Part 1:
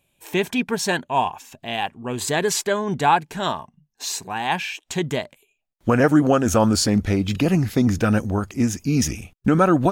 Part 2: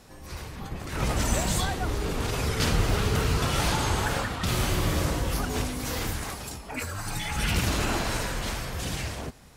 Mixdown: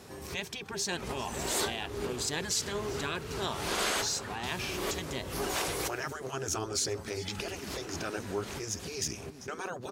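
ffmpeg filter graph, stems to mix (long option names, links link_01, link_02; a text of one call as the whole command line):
ffmpeg -i stem1.wav -i stem2.wav -filter_complex "[0:a]equalizer=frequency=5300:width_type=o:width=1:gain=11,volume=-12.5dB,asplit=3[link_01][link_02][link_03];[link_02]volume=-21dB[link_04];[1:a]volume=2dB[link_05];[link_03]apad=whole_len=421908[link_06];[link_05][link_06]sidechaincompress=threshold=-48dB:ratio=8:attack=16:release=255[link_07];[link_04]aecho=0:1:393:1[link_08];[link_01][link_07][link_08]amix=inputs=3:normalize=0,highpass=79,afftfilt=real='re*lt(hypot(re,im),0.126)':imag='im*lt(hypot(re,im),0.126)':win_size=1024:overlap=0.75,equalizer=frequency=400:width_type=o:width=0.21:gain=10" out.wav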